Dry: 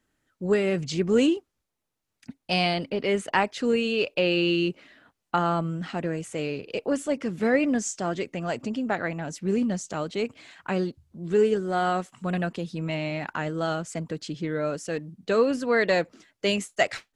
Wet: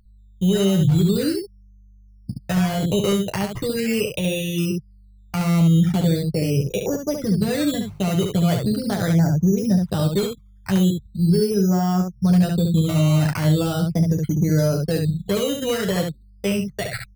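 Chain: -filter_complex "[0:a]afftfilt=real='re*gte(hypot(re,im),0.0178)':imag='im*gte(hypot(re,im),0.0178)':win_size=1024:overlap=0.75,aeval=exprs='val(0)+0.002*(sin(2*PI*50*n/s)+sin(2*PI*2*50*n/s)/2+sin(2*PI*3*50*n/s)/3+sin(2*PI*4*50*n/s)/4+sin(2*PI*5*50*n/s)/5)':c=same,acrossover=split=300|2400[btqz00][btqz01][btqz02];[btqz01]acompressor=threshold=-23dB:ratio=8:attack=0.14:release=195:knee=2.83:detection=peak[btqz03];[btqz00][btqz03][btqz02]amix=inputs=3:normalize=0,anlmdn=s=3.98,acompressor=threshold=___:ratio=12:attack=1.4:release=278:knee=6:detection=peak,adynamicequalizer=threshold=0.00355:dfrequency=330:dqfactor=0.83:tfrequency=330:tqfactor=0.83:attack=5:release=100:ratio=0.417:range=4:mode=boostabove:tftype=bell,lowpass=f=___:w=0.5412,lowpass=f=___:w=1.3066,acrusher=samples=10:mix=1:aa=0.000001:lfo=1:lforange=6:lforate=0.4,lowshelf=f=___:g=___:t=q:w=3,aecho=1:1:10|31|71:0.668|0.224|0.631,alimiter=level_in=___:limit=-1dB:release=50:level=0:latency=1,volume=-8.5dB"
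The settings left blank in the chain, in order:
-29dB, 3.5k, 3.5k, 190, 10.5, 15.5dB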